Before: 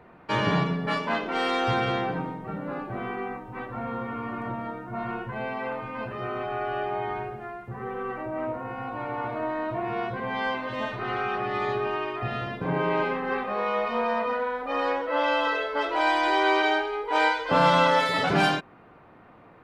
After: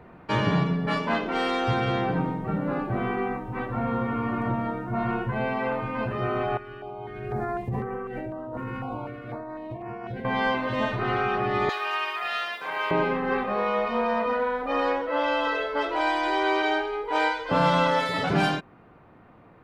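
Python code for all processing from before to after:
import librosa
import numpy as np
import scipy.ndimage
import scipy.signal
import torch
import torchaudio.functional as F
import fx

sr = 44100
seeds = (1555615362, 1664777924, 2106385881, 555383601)

y = fx.chain(x, sr, fx.over_compress(threshold_db=-38.0, ratio=-1.0),
    fx.filter_held_notch(hz=4.0, low_hz=700.0, high_hz=3700.0), at=(6.57, 10.25))
y = fx.chain(y, sr, fx.highpass(hz=810.0, slope=12),
    fx.tilt_eq(slope=3.5), at=(11.69, 12.91))
y = fx.low_shelf(y, sr, hz=280.0, db=6.5)
y = fx.rider(y, sr, range_db=3, speed_s=0.5)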